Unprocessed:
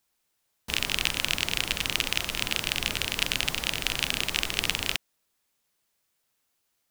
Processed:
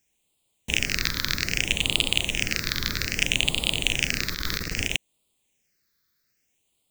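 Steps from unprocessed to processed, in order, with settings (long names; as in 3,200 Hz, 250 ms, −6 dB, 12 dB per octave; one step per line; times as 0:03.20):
0:04.32–0:04.90: compressor whose output falls as the input rises −32 dBFS, ratio −1
all-pass phaser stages 6, 0.62 Hz, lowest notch 740–1,600 Hz
level +5.5 dB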